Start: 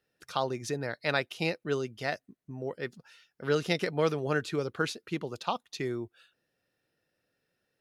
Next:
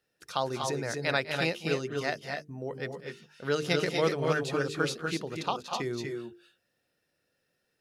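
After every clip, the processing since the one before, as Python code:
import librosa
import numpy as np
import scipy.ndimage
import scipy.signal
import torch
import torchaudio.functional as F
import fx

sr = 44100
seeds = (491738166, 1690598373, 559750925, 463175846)

y = fx.peak_eq(x, sr, hz=7900.0, db=3.0, octaves=1.6)
y = fx.hum_notches(y, sr, base_hz=50, count=9)
y = fx.echo_multitap(y, sr, ms=(200, 231, 244, 258), db=(-17.5, -12.0, -5.5, -10.0))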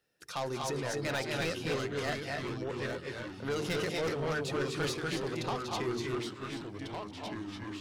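y = 10.0 ** (-29.0 / 20.0) * np.tanh(x / 10.0 ** (-29.0 / 20.0))
y = fx.echo_pitch(y, sr, ms=421, semitones=-3, count=3, db_per_echo=-6.0)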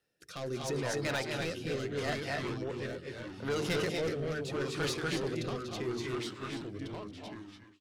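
y = fx.fade_out_tail(x, sr, length_s=0.74)
y = fx.rotary(y, sr, hz=0.75)
y = y * 10.0 ** (1.5 / 20.0)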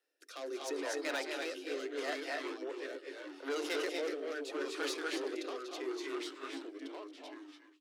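y = scipy.signal.sosfilt(scipy.signal.cheby1(10, 1.0, 270.0, 'highpass', fs=sr, output='sos'), x)
y = y * 10.0 ** (-2.5 / 20.0)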